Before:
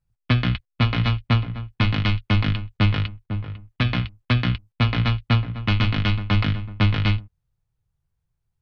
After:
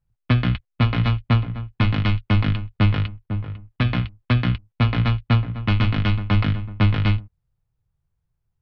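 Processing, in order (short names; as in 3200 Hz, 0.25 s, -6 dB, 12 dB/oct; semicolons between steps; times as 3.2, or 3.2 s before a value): high shelf 2800 Hz -8.5 dB; gain +1.5 dB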